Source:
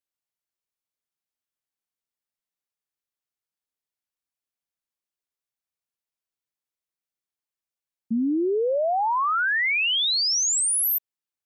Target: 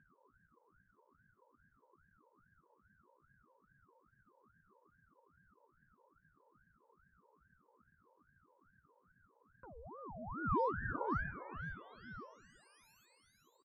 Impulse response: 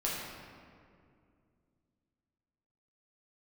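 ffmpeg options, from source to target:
-filter_complex "[0:a]atempo=0.84,asuperpass=centerf=720:order=4:qfactor=7.1,aeval=exprs='0.106*(cos(1*acos(clip(val(0)/0.106,-1,1)))-cos(1*PI/2))+0.0015*(cos(7*acos(clip(val(0)/0.106,-1,1)))-cos(7*PI/2))':c=same,aecho=1:1:515|1030|1545:0.178|0.0462|0.012,acompressor=mode=upward:threshold=-45dB:ratio=2.5,asplit=2[a][b];[1:a]atrim=start_sample=2205,lowpass=1.9k[c];[b][c]afir=irnorm=-1:irlink=0,volume=-16dB[d];[a][d]amix=inputs=2:normalize=0,acompressor=threshold=-35dB:ratio=16,aeval=exprs='val(0)*sin(2*PI*540*n/s+540*0.65/2.4*sin(2*PI*2.4*n/s))':c=same,volume=6dB"

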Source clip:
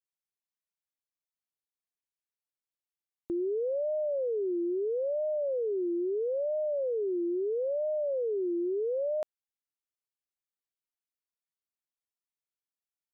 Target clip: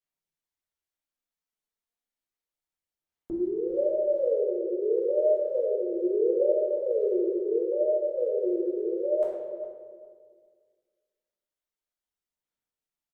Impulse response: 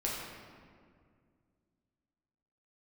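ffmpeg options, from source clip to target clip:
-filter_complex "[0:a]asplit=3[a][b][c];[a]afade=t=out:st=6.33:d=0.02[d];[b]highpass=f=280:w=0.5412,highpass=f=280:w=1.3066,afade=t=in:st=6.33:d=0.02,afade=t=out:st=7.49:d=0.02[e];[c]afade=t=in:st=7.49:d=0.02[f];[d][e][f]amix=inputs=3:normalize=0,aphaser=in_gain=1:out_gain=1:delay=4.7:decay=0.42:speed=0.32:type=sinusoidal,asplit=2[g][h];[h]adelay=408,lowpass=f=930:p=1,volume=-11dB,asplit=2[i][j];[j]adelay=408,lowpass=f=930:p=1,volume=0.28,asplit=2[k][l];[l]adelay=408,lowpass=f=930:p=1,volume=0.28[m];[g][i][k][m]amix=inputs=4:normalize=0[n];[1:a]atrim=start_sample=2205,asetrate=66150,aresample=44100[o];[n][o]afir=irnorm=-1:irlink=0"

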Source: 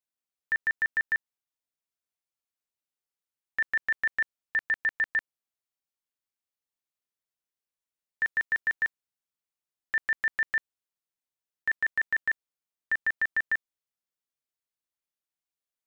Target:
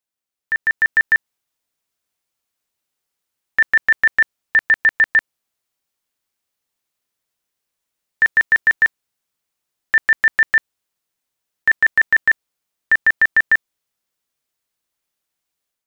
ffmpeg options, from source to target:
-af "dynaudnorm=f=490:g=3:m=8dB,volume=5dB"

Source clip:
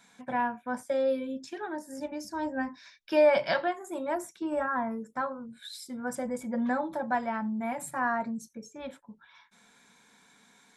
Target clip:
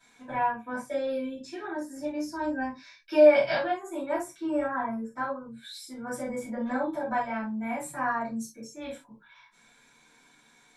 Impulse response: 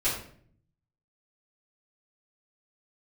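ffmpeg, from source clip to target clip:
-filter_complex "[0:a]asettb=1/sr,asplit=3[a][b][c];[a]atrim=end=8.364[d];[b]atrim=start=8.36:end=9.02,asetpts=PTS-STARTPTS,afade=t=in:d=0.004:c=qsin,afade=t=out:st=0.656:d=0.004:c=qsin,highshelf=f=4.4k:g=8.5[e];[c]atrim=start=9.016[f];[d][e]acrossfade=d=0.004:c1=hsin:c2=qsin[g];[g][f]acrossfade=d=0.004:c1=qsin:c2=hsin[h];[1:a]atrim=start_sample=2205,atrim=end_sample=3528[i];[h][i]afir=irnorm=-1:irlink=0,volume=-8dB"

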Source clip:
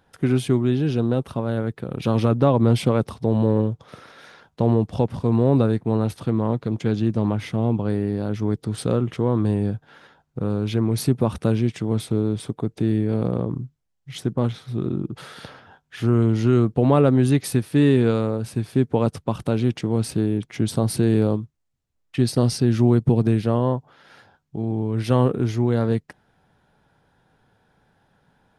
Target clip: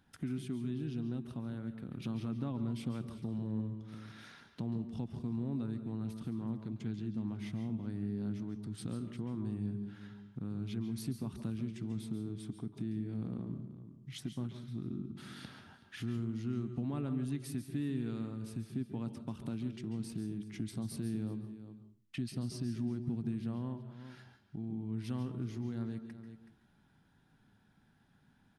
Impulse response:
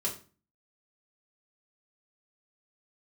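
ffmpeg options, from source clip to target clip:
-filter_complex "[0:a]equalizer=f=250:t=o:w=1:g=7,equalizer=f=500:t=o:w=1:g=-12,equalizer=f=1k:t=o:w=1:g=-3,asplit=2[a][b];[b]aecho=0:1:375:0.0944[c];[a][c]amix=inputs=2:normalize=0,acompressor=threshold=-40dB:ratio=2,asplit=2[d][e];[1:a]atrim=start_sample=2205,adelay=137[f];[e][f]afir=irnorm=-1:irlink=0,volume=-13dB[g];[d][g]amix=inputs=2:normalize=0,volume=-6.5dB"

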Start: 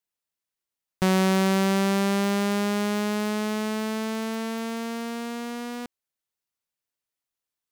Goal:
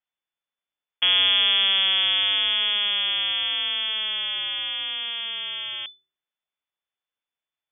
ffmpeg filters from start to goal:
-af "aeval=exprs='if(lt(val(0),0),0.447*val(0),val(0))':c=same,lowpass=f=3k:t=q:w=0.5098,lowpass=f=3k:t=q:w=0.6013,lowpass=f=3k:t=q:w=0.9,lowpass=f=3k:t=q:w=2.563,afreqshift=-3500,bandreject=f=75.97:t=h:w=4,bandreject=f=151.94:t=h:w=4,bandreject=f=227.91:t=h:w=4,bandreject=f=303.88:t=h:w=4,bandreject=f=379.85:t=h:w=4,bandreject=f=455.82:t=h:w=4,volume=4dB"

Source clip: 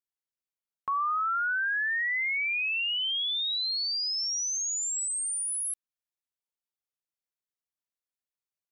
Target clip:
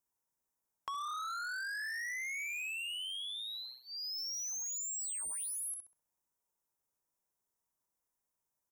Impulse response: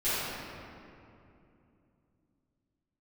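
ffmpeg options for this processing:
-filter_complex "[0:a]acrossover=split=230|4400[a][b][c];[b]adynamicsmooth=sensitivity=2:basefreq=1.6k[d];[a][d][c]amix=inputs=3:normalize=0,asuperstop=centerf=4400:order=4:qfactor=3.7,asplit=2[e][f];[f]adelay=64,lowpass=f=3.9k:p=1,volume=-5dB,asplit=2[g][h];[h]adelay=64,lowpass=f=3.9k:p=1,volume=0.4,asplit=2[i][j];[j]adelay=64,lowpass=f=3.9k:p=1,volume=0.4,asplit=2[k][l];[l]adelay=64,lowpass=f=3.9k:p=1,volume=0.4,asplit=2[m][n];[n]adelay=64,lowpass=f=3.9k:p=1,volume=0.4[o];[g][i][k][m][o]amix=inputs=5:normalize=0[p];[e][p]amix=inputs=2:normalize=0,asoftclip=type=tanh:threshold=-38dB,equalizer=f=950:w=5.4:g=9,acompressor=threshold=-51dB:ratio=2.5,volume=7.5dB"

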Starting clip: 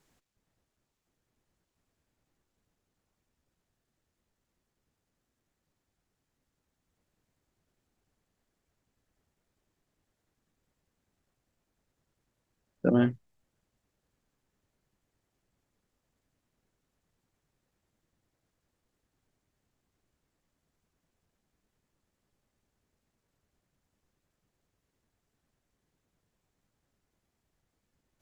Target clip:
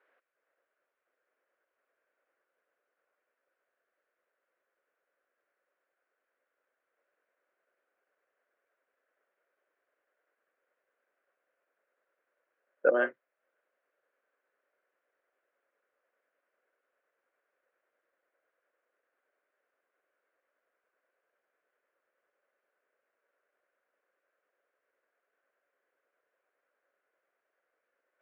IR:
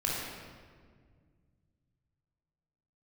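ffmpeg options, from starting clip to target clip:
-af "highpass=f=470:w=0.5412,highpass=f=470:w=1.3066,equalizer=f=540:t=q:w=4:g=6,equalizer=f=860:t=q:w=4:g=-8,equalizer=f=1.5k:t=q:w=4:g=7,lowpass=f=2.3k:w=0.5412,lowpass=f=2.3k:w=1.3066,volume=3.5dB"

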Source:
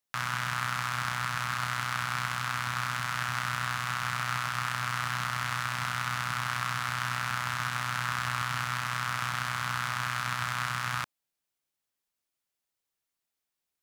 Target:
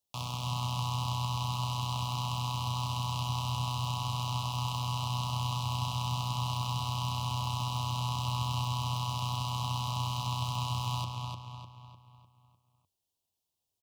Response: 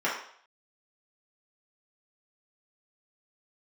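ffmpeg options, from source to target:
-filter_complex "[0:a]equalizer=f=88:t=o:w=0.46:g=12.5,acrossover=split=330|6000[a][b][c];[c]aeval=exprs='(mod(75*val(0)+1,2)-1)/75':c=same[d];[a][b][d]amix=inputs=3:normalize=0,asuperstop=centerf=1700:order=8:qfactor=1,asplit=2[e][f];[f]adelay=301,lowpass=f=4.4k:p=1,volume=-3dB,asplit=2[g][h];[h]adelay=301,lowpass=f=4.4k:p=1,volume=0.47,asplit=2[i][j];[j]adelay=301,lowpass=f=4.4k:p=1,volume=0.47,asplit=2[k][l];[l]adelay=301,lowpass=f=4.4k:p=1,volume=0.47,asplit=2[m][n];[n]adelay=301,lowpass=f=4.4k:p=1,volume=0.47,asplit=2[o][p];[p]adelay=301,lowpass=f=4.4k:p=1,volume=0.47[q];[e][g][i][k][m][o][q]amix=inputs=7:normalize=0"

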